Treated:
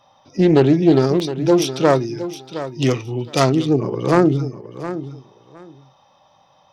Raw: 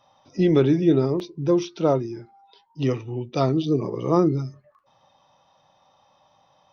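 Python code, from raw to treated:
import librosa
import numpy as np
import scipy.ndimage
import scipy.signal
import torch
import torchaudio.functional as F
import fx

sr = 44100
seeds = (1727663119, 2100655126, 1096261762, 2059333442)

y = fx.self_delay(x, sr, depth_ms=0.19)
y = fx.high_shelf(y, sr, hz=2100.0, db=10.0, at=(0.92, 3.5))
y = fx.echo_feedback(y, sr, ms=715, feedback_pct=18, wet_db=-12.5)
y = y * 10.0 ** (5.0 / 20.0)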